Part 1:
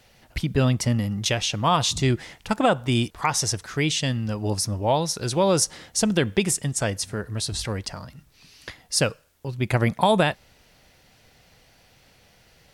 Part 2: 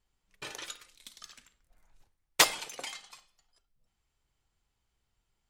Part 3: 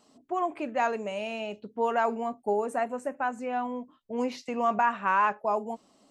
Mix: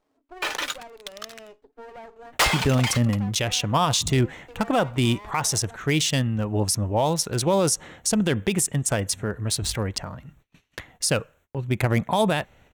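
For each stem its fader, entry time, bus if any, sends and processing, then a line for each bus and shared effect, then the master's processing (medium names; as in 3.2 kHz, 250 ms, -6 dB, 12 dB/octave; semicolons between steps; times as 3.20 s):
+2.0 dB, 2.10 s, no send, local Wiener filter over 9 samples; gate -55 dBFS, range -31 dB; treble shelf 7.4 kHz +10.5 dB
-1.0 dB, 0.00 s, no send, overdrive pedal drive 11 dB, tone 1.1 kHz, clips at -4.5 dBFS; high-pass 820 Hz 6 dB/octave; waveshaping leveller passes 5
-8.0 dB, 0.00 s, no send, Chebyshev high-pass 270 Hz, order 6; compression 6:1, threshold -30 dBFS, peak gain reduction 10 dB; sliding maximum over 17 samples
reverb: none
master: peak limiter -12 dBFS, peak gain reduction 10.5 dB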